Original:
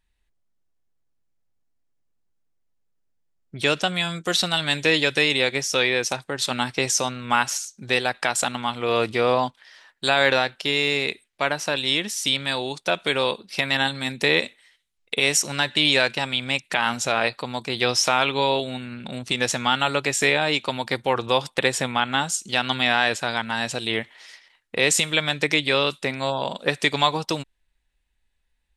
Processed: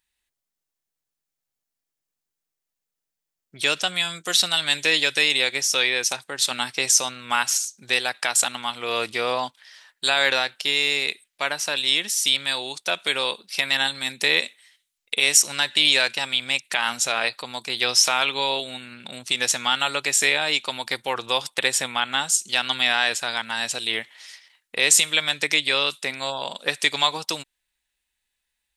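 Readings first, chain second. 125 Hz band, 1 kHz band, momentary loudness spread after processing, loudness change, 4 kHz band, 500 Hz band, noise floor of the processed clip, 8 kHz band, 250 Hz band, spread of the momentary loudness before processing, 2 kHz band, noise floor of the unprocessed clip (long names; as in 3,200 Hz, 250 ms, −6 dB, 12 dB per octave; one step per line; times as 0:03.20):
−11.5 dB, −3.0 dB, 11 LU, +1.0 dB, +2.5 dB, −6.0 dB, −85 dBFS, +5.5 dB, −8.5 dB, 8 LU, 0.0 dB, −71 dBFS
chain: spectral tilt +3 dB per octave
level −3 dB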